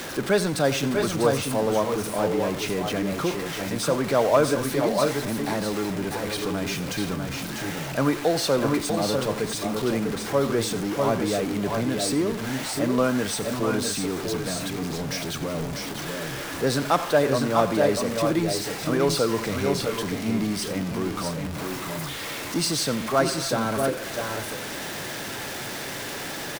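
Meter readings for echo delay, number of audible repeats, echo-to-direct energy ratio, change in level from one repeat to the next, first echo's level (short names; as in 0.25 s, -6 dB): 88 ms, 3, -4.0 dB, no steady repeat, -15.5 dB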